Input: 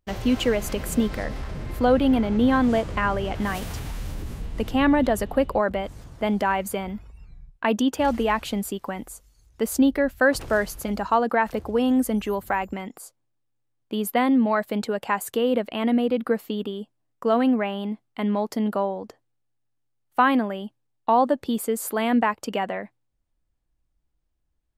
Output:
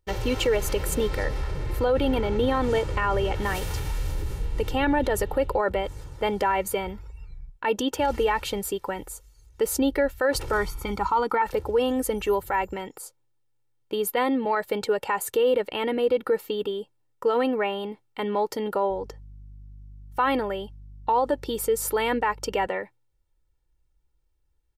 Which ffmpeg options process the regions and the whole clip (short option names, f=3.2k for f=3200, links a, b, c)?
-filter_complex "[0:a]asettb=1/sr,asplit=3[a][b][c];[a]atrim=end=10.524[d];[b]atrim=start=10.52:end=11.42,asetpts=PTS-STARTPTS,afade=t=in:d=0.004:c=qsin,afade=t=out:st=0.896:d=0.004:c=qsin,acrossover=split=3000[e][f];[f]acompressor=threshold=-43dB:ratio=4:attack=1:release=60[g];[e][g]amix=inputs=2:normalize=0,bandreject=f=50:t=h:w=6,bandreject=f=100:t=h:w=6,bandreject=f=150:t=h:w=6,aecho=1:1:0.9:0.66,atrim=end_sample=39690[h];[c]atrim=start=11.416[i];[d][h]acrossfade=d=0.004:c1=hsin:c2=qsin[j];[j][i]acrossfade=d=0.004:c1=qsin:c2=hsin,asettb=1/sr,asplit=3[k][l][m];[k]atrim=end=18.904[n];[l]atrim=start=18.9:end=22.67,asetpts=PTS-STARTPTS,afade=t=in:d=0.004:c=qsin,afade=t=out:st=3.766:d=0.004:c=qsin,equalizer=f=5.6k:w=6.5:g=7,aeval=exprs='val(0)+0.00501*(sin(2*PI*50*n/s)+sin(2*PI*2*50*n/s)/2+sin(2*PI*3*50*n/s)/3+sin(2*PI*4*50*n/s)/4+sin(2*PI*5*50*n/s)/5)':c=same[o];[m]atrim=start=22.666[p];[n][o]acrossfade=d=0.004:c1=hsin:c2=qsin[q];[q][p]acrossfade=d=0.004:c1=qsin:c2=hsin,aecho=1:1:2.2:0.73,alimiter=limit=-14.5dB:level=0:latency=1:release=30"